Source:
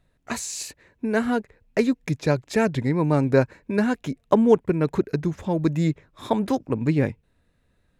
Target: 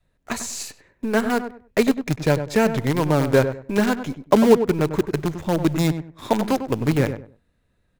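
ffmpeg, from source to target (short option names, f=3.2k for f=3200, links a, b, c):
-filter_complex "[0:a]adynamicequalizer=threshold=0.0282:dfrequency=230:dqfactor=1.2:tfrequency=230:tqfactor=1.2:attack=5:release=100:ratio=0.375:range=2.5:mode=cutabove:tftype=bell,asplit=2[a][b];[b]acrusher=bits=4:dc=4:mix=0:aa=0.000001,volume=-4dB[c];[a][c]amix=inputs=2:normalize=0,asplit=2[d][e];[e]adelay=98,lowpass=f=1.4k:p=1,volume=-9dB,asplit=2[f][g];[g]adelay=98,lowpass=f=1.4k:p=1,volume=0.25,asplit=2[h][i];[i]adelay=98,lowpass=f=1.4k:p=1,volume=0.25[j];[d][f][h][j]amix=inputs=4:normalize=0,volume=-1.5dB"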